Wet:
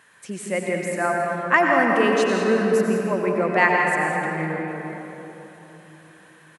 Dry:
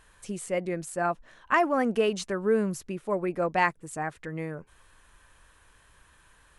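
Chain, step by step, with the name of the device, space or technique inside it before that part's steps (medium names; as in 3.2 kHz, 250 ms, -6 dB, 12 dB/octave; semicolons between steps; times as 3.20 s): stadium PA (high-pass 130 Hz 24 dB/octave; peaking EQ 1.9 kHz +7 dB 0.6 oct; loudspeakers at several distances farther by 57 m -11 dB, 69 m -12 dB; reverberation RT60 3.6 s, pre-delay 82 ms, DRR 0 dB); trim +2.5 dB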